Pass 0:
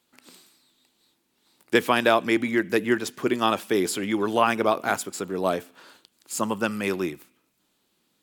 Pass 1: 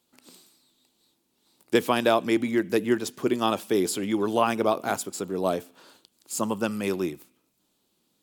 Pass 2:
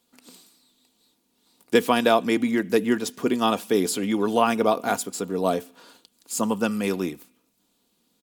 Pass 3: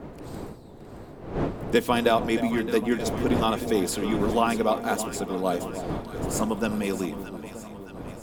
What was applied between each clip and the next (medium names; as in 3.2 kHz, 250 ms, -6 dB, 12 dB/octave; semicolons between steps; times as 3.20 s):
peaking EQ 1.8 kHz -7 dB 1.4 oct
comb 4.2 ms, depth 40%; trim +2 dB
wind noise 440 Hz -32 dBFS; echo whose repeats swap between lows and highs 310 ms, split 920 Hz, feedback 78%, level -10 dB; trim -3 dB